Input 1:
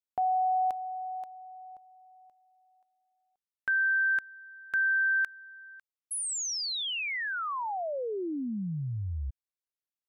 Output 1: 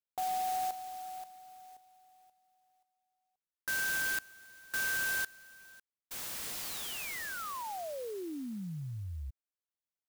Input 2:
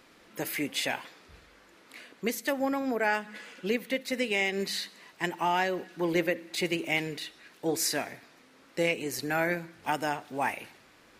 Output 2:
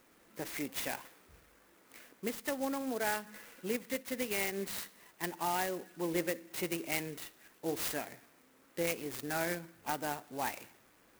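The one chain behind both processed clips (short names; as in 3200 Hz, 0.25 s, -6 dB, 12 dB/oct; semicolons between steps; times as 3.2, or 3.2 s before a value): clock jitter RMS 0.062 ms; gain -6.5 dB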